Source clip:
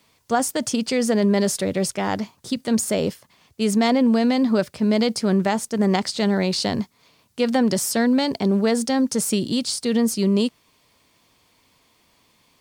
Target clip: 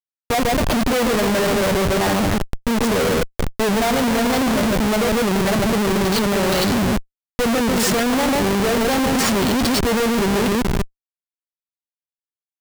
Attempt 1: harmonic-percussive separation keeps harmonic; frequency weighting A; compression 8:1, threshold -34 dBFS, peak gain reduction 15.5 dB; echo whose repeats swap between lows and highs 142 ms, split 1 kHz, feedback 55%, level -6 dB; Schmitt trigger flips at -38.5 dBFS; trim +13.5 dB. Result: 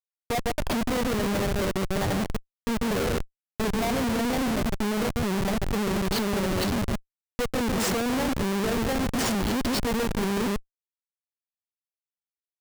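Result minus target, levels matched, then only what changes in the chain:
compression: peak gain reduction +9 dB
change: compression 8:1, threshold -24 dBFS, peak gain reduction 6.5 dB

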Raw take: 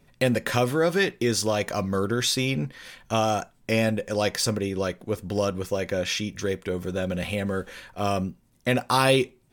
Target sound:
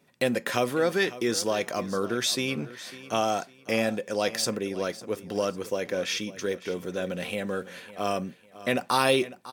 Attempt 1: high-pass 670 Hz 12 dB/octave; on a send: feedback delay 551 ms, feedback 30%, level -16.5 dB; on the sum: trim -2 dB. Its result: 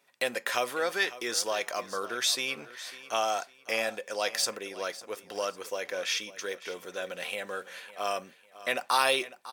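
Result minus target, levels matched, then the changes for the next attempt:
250 Hz band -11.5 dB
change: high-pass 200 Hz 12 dB/octave

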